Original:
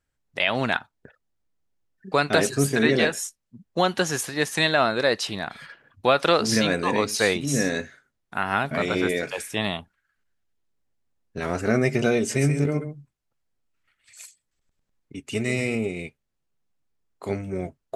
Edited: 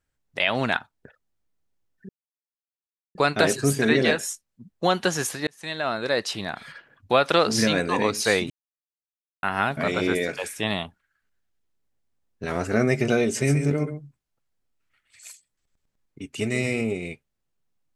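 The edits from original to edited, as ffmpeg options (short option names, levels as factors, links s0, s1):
-filter_complex "[0:a]asplit=5[s0][s1][s2][s3][s4];[s0]atrim=end=2.09,asetpts=PTS-STARTPTS,afade=t=out:st=2.086:d=0.004:c=hsin,apad=pad_dur=1.06[s5];[s1]atrim=start=2.09:end=4.41,asetpts=PTS-STARTPTS,afade=t=in:d=0.004:c=hsin,afade=t=out:st=2.316:d=0.004:c=hsin[s6];[s2]atrim=start=4.41:end=7.44,asetpts=PTS-STARTPTS,afade=t=in:d=1.23:c=qsin,afade=t=out:st=3.026:d=0.004:c=hsin[s7];[s3]atrim=start=7.44:end=8.37,asetpts=PTS-STARTPTS,volume=0[s8];[s4]atrim=start=8.37,asetpts=PTS-STARTPTS,afade=t=in:d=0.004:c=hsin[s9];[s5][s6][s7][s8][s9]concat=n=5:v=0:a=1"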